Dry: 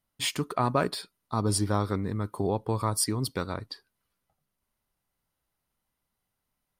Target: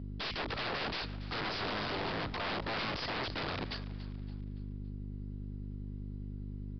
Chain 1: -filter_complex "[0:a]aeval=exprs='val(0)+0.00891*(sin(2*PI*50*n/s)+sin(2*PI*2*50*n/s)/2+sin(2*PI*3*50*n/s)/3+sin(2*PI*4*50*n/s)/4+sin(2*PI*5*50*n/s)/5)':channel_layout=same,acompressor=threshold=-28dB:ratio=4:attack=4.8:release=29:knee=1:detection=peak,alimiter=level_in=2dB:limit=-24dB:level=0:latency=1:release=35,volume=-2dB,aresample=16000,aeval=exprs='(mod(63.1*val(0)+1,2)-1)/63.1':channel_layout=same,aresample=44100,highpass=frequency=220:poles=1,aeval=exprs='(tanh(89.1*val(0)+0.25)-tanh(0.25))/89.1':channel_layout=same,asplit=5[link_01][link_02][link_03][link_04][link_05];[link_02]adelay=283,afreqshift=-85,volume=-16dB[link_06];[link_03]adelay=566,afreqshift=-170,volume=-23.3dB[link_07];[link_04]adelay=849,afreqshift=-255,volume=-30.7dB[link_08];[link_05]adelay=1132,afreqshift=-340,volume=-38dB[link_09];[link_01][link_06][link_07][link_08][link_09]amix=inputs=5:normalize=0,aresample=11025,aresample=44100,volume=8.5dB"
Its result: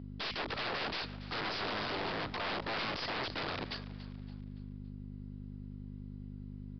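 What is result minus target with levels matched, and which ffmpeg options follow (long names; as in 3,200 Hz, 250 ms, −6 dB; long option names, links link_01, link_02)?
125 Hz band −3.0 dB
-filter_complex "[0:a]aeval=exprs='val(0)+0.00891*(sin(2*PI*50*n/s)+sin(2*PI*2*50*n/s)/2+sin(2*PI*3*50*n/s)/3+sin(2*PI*4*50*n/s)/4+sin(2*PI*5*50*n/s)/5)':channel_layout=same,acompressor=threshold=-28dB:ratio=4:attack=4.8:release=29:knee=1:detection=peak,alimiter=level_in=2dB:limit=-24dB:level=0:latency=1:release=35,volume=-2dB,aresample=16000,aeval=exprs='(mod(63.1*val(0)+1,2)-1)/63.1':channel_layout=same,aresample=44100,highpass=frequency=91:poles=1,aeval=exprs='(tanh(89.1*val(0)+0.25)-tanh(0.25))/89.1':channel_layout=same,asplit=5[link_01][link_02][link_03][link_04][link_05];[link_02]adelay=283,afreqshift=-85,volume=-16dB[link_06];[link_03]adelay=566,afreqshift=-170,volume=-23.3dB[link_07];[link_04]adelay=849,afreqshift=-255,volume=-30.7dB[link_08];[link_05]adelay=1132,afreqshift=-340,volume=-38dB[link_09];[link_01][link_06][link_07][link_08][link_09]amix=inputs=5:normalize=0,aresample=11025,aresample=44100,volume=8.5dB"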